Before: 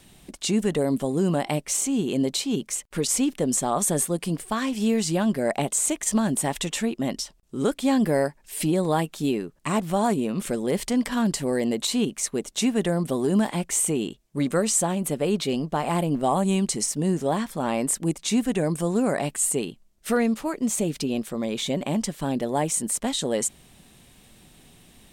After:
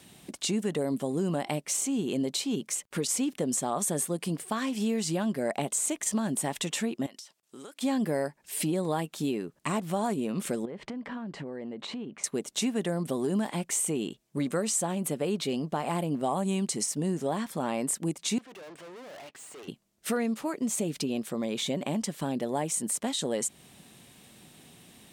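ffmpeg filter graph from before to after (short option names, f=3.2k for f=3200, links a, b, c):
-filter_complex "[0:a]asettb=1/sr,asplit=3[a][b][c];[a]atrim=end=7.064[d];[b]atrim=start=7.06:end=7.81,asetpts=PTS-STARTPTS,afade=t=in:d=0.004:c=qsin,afade=t=out:st=0.746:d=0.004:c=qsin,highpass=f=1.2k:p=1,acompressor=threshold=-41dB:ratio=12:attack=3.2:release=140:knee=1:detection=peak[e];[c]atrim=start=7.806[f];[d][e]acrossfade=d=0.004:c1=hsin:c2=qsin[g];[g][f]acrossfade=d=0.004:c1=qsin:c2=hsin,asettb=1/sr,asplit=3[h][i][j];[h]atrim=end=10.654[k];[i]atrim=start=10.65:end=12.24,asetpts=PTS-STARTPTS,afade=t=in:d=0.004:c=qsin,afade=t=out:st=1.586:d=0.004:c=qsin,lowpass=2.1k,acompressor=threshold=-33dB:ratio=16:attack=3.2:release=140:knee=1:detection=peak[l];[j]atrim=start=12.236[m];[k][l]acrossfade=d=0.004:c1=hsin:c2=qsin[n];[n][m]acrossfade=d=0.004:c1=qsin:c2=hsin,asettb=1/sr,asplit=3[o][p][q];[o]atrim=end=18.384[r];[p]atrim=start=18.38:end=19.68,asetpts=PTS-STARTPTS,afade=t=in:d=0.004:c=qsin,afade=t=out:st=1.296:d=0.004:c=qsin,highpass=480,lowpass=3.5k,aeval=exprs='(tanh(158*val(0)+0.6)-tanh(0.6))/158':c=same[s];[q]atrim=start=19.676[t];[r][s]acrossfade=d=0.004:c1=hsin:c2=qsin[u];[u][t]acrossfade=d=0.004:c1=qsin:c2=hsin,highpass=110,acompressor=threshold=-30dB:ratio=2"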